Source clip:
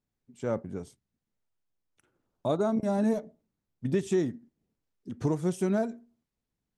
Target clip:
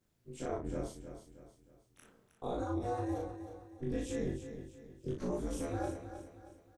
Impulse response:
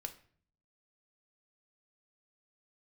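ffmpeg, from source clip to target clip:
-filter_complex "[0:a]afftfilt=real='re':imag='-im':win_size=2048:overlap=0.75,areverse,acompressor=threshold=-39dB:ratio=6,areverse,aeval=exprs='val(0)*sin(2*PI*120*n/s)':channel_layout=same,alimiter=level_in=19dB:limit=-24dB:level=0:latency=1:release=248,volume=-19dB,asplit=2[link_01][link_02];[link_02]adelay=37,volume=-3dB[link_03];[link_01][link_03]amix=inputs=2:normalize=0,aecho=1:1:314|628|942|1256:0.299|0.119|0.0478|0.0191,volume=14.5dB"

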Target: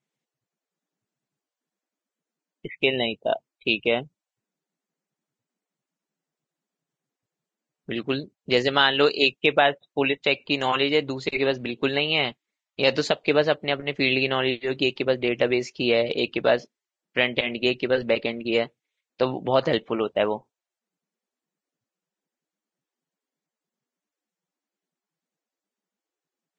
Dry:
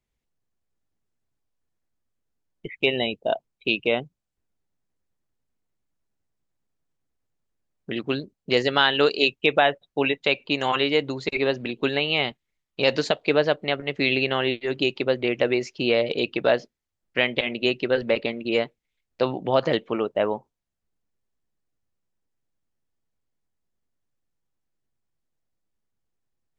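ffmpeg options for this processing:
ffmpeg -i in.wav -filter_complex "[0:a]asettb=1/sr,asplit=3[link_01][link_02][link_03];[link_01]atrim=end=19.954[link_04];[link_02]atrim=start=19.95:end=20.35,asetpts=PTS-STARTPTS,afade=type=in:duration=0.004:curve=qsin,afade=type=out:start_time=0.396:duration=0.004:curve=qsin,adynamicequalizer=threshold=0.00447:dfrequency=3600:dqfactor=1.2:tfrequency=3600:tqfactor=1.2:attack=5:release=100:ratio=0.375:range=3.5:mode=boostabove:tftype=bell[link_05];[link_03]atrim=start=20.346[link_06];[link_04][link_05]acrossfade=duration=0.004:curve1=hsin:curve2=qsin[link_07];[link_07][link_06]acrossfade=duration=0.004:curve1=qsin:curve2=hsin" -ar 22050 -c:a libvorbis -b:a 32k out.ogg

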